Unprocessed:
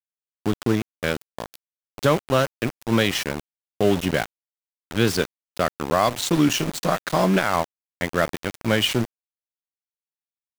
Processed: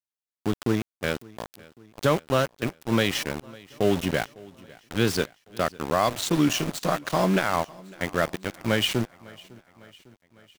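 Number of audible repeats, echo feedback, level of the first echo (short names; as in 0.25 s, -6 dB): 3, 59%, -23.0 dB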